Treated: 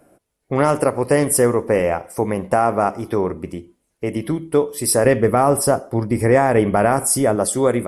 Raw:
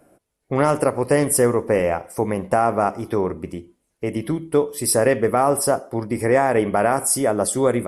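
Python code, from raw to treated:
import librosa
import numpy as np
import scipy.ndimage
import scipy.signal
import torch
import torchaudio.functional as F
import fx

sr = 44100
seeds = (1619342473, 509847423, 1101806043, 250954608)

y = fx.low_shelf(x, sr, hz=170.0, db=9.0, at=(5.04, 7.36))
y = y * 10.0 ** (1.5 / 20.0)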